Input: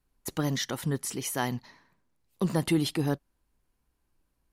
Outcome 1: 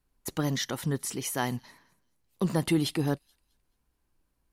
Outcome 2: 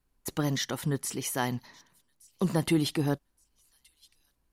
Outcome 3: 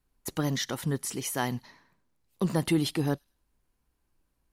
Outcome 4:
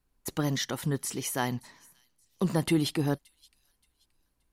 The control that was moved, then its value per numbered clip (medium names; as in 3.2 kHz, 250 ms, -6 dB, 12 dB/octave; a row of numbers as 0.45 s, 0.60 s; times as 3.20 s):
feedback echo behind a high-pass, time: 215 ms, 1171 ms, 102 ms, 575 ms